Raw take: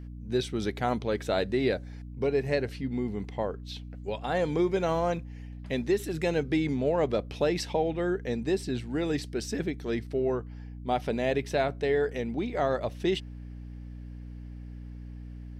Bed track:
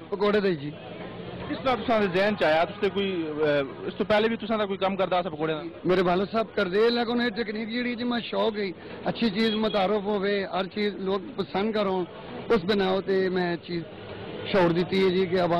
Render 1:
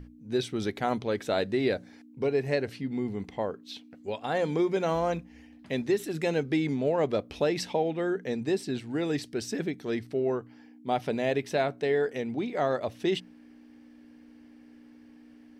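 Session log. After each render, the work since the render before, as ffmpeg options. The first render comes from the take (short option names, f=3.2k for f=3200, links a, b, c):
-af "bandreject=f=60:t=h:w=6,bandreject=f=120:t=h:w=6,bandreject=f=180:t=h:w=6"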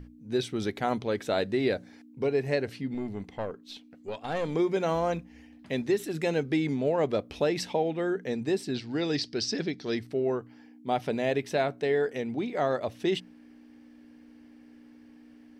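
-filter_complex "[0:a]asettb=1/sr,asplit=3[a][b][c];[a]atrim=end=2.944[d];[b]atrim=start=2.94:end=4.55,asetpts=PTS-STARTPTS,afade=t=in:d=0.004:c=qsin,afade=t=out:st=1.606:d=0.004:c=qsin,aeval=exprs='(tanh(14.1*val(0)+0.5)-tanh(0.5))/14.1':c=same[e];[c]atrim=start=4.546[f];[d][e]acrossfade=d=0.004:c1=hsin:c2=qsin[g];[g][f]acrossfade=d=0.004:c1=qsin:c2=hsin,asettb=1/sr,asplit=3[h][i][j];[h]atrim=end=8.744[k];[i]atrim=start=8.74:end=9.98,asetpts=PTS-STARTPTS,afade=t=in:d=0.004:c=qsin,afade=t=out:st=1.236:d=0.004:c=qsin,lowpass=f=4.9k:t=q:w=4.3[l];[j]atrim=start=9.976[m];[k][l]acrossfade=d=0.004:c1=hsin:c2=qsin[n];[n][m]acrossfade=d=0.004:c1=qsin:c2=hsin"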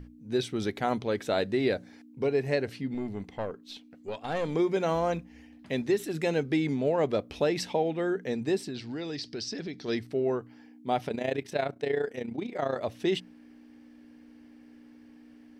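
-filter_complex "[0:a]asettb=1/sr,asplit=3[a][b][c];[a]atrim=end=8.594[d];[b]atrim=start=8.59:end=9.88,asetpts=PTS-STARTPTS,afade=t=in:d=0.004:c=qsin,afade=t=out:st=1.286:d=0.004:c=qsin,acompressor=threshold=-32dB:ratio=6:attack=3.2:release=140:knee=1:detection=peak[e];[c]atrim=start=9.876[f];[d][e]acrossfade=d=0.004:c1=hsin:c2=qsin[g];[g][f]acrossfade=d=0.004:c1=qsin:c2=hsin,asettb=1/sr,asplit=3[h][i][j];[h]atrim=end=11.084[k];[i]atrim=start=11.08:end=12.76,asetpts=PTS-STARTPTS,afade=t=in:d=0.004:c=qsin,afade=t=out:st=1.676:d=0.004:c=qsin,tremolo=f=29:d=0.75[l];[j]atrim=start=12.756[m];[k][l]acrossfade=d=0.004:c1=hsin:c2=qsin[n];[n][m]acrossfade=d=0.004:c1=qsin:c2=hsin"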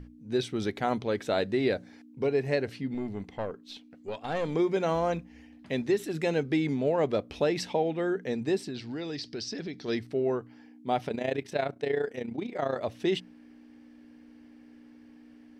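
-af "highshelf=f=11k:g=-7"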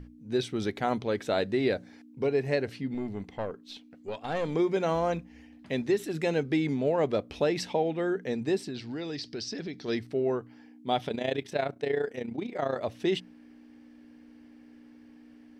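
-filter_complex "[0:a]asettb=1/sr,asplit=3[a][b][c];[a]atrim=end=10.874[d];[b]atrim=start=10.87:end=11.48,asetpts=PTS-STARTPTS,afade=t=in:d=0.004:c=qsin,afade=t=out:st=0.606:d=0.004:c=qsin,equalizer=f=3.4k:t=o:w=0.22:g=10.5[e];[c]atrim=start=11.476[f];[d][e]acrossfade=d=0.004:c1=hsin:c2=qsin[g];[g][f]acrossfade=d=0.004:c1=qsin:c2=hsin"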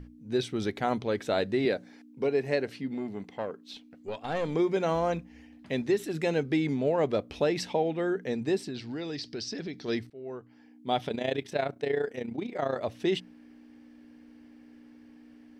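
-filter_complex "[0:a]asettb=1/sr,asplit=3[a][b][c];[a]atrim=end=1.654[d];[b]atrim=start=1.65:end=3.74,asetpts=PTS-STARTPTS,afade=t=in:d=0.004:c=qsin,afade=t=out:st=2.086:d=0.004:c=qsin,highpass=160[e];[c]atrim=start=3.736[f];[d][e]acrossfade=d=0.004:c1=hsin:c2=qsin[g];[g][f]acrossfade=d=0.004:c1=qsin:c2=hsin,asplit=2[h][i];[h]atrim=end=10.1,asetpts=PTS-STARTPTS,afade=t=out:st=10.096:d=0.004:c=hsin:silence=0.0707946[j];[i]atrim=start=10.1,asetpts=PTS-STARTPTS,afade=t=in:d=0.87:silence=0.0707946[k];[j][k]concat=n=2:v=0:a=1"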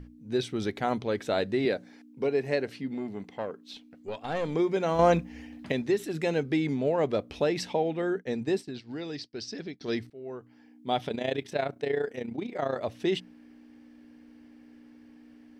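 -filter_complex "[0:a]asettb=1/sr,asplit=3[a][b][c];[a]atrim=end=8.024[d];[b]atrim=start=8.02:end=9.81,asetpts=PTS-STARTPTS,afade=t=in:d=0.004:c=qsin,afade=t=out:st=1.786:d=0.004:c=qsin,agate=range=-33dB:threshold=-35dB:ratio=3:release=100:detection=peak[e];[c]atrim=start=9.806[f];[d][e]acrossfade=d=0.004:c1=hsin:c2=qsin[g];[g][f]acrossfade=d=0.004:c1=qsin:c2=hsin,asplit=3[h][i][j];[h]atrim=end=4.992[k];[i]atrim=start=4.988:end=5.722,asetpts=PTS-STARTPTS,volume=7.5dB[l];[j]atrim=start=5.718[m];[k][l]acrossfade=d=0.004:c1=hsin:c2=hsin[n];[n][m]acrossfade=d=0.004:c1=hsin:c2=hsin"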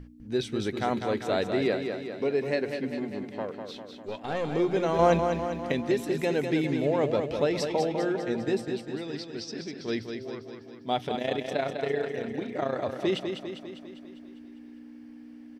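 -af "aecho=1:1:200|400|600|800|1000|1200|1400|1600:0.473|0.274|0.159|0.0923|0.0535|0.0311|0.018|0.0104"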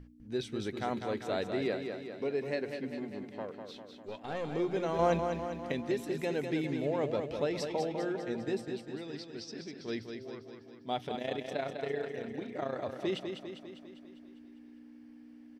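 -af "volume=-6.5dB"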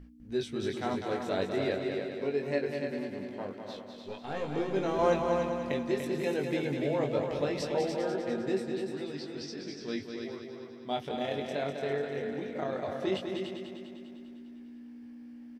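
-filter_complex "[0:a]asplit=2[a][b];[b]adelay=21,volume=-4dB[c];[a][c]amix=inputs=2:normalize=0,aecho=1:1:292:0.531"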